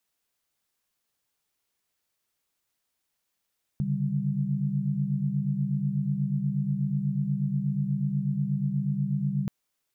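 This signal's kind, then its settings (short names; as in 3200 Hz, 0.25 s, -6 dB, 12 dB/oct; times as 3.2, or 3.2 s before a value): chord C#3/D3/G3 sine, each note -29 dBFS 5.68 s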